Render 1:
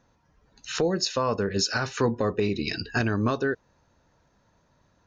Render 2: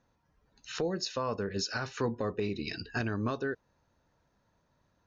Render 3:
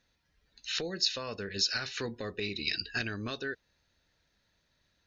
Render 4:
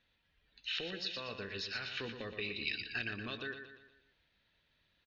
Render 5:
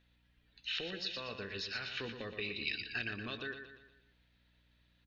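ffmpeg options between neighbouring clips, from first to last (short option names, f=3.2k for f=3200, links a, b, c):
-af "lowpass=7.1k,volume=-7.5dB"
-af "equalizer=f=125:t=o:w=1:g=-6,equalizer=f=250:t=o:w=1:g=-4,equalizer=f=500:t=o:w=1:g=-3,equalizer=f=1k:t=o:w=1:g=-10,equalizer=f=2k:t=o:w=1:g=6,equalizer=f=4k:t=o:w=1:g=10"
-af "acompressor=threshold=-41dB:ratio=1.5,lowpass=f=3.1k:t=q:w=2.4,aecho=1:1:119|238|357|476|595:0.398|0.183|0.0842|0.0388|0.0178,volume=-4dB"
-af "aeval=exprs='val(0)+0.000282*(sin(2*PI*60*n/s)+sin(2*PI*2*60*n/s)/2+sin(2*PI*3*60*n/s)/3+sin(2*PI*4*60*n/s)/4+sin(2*PI*5*60*n/s)/5)':c=same"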